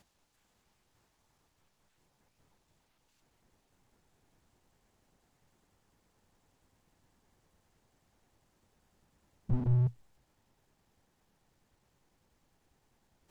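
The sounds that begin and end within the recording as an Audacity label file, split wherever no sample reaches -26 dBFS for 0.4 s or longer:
9.500000	9.870000	sound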